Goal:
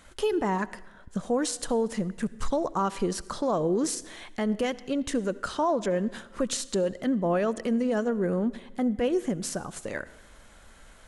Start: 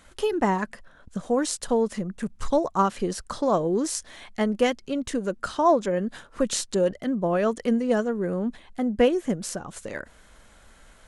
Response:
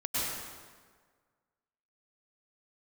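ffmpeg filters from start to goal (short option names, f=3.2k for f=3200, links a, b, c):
-filter_complex "[0:a]alimiter=limit=-18.5dB:level=0:latency=1:release=78,asplit=2[a][b];[1:a]atrim=start_sample=2205,asetrate=66150,aresample=44100[c];[b][c]afir=irnorm=-1:irlink=0,volume=-22dB[d];[a][d]amix=inputs=2:normalize=0"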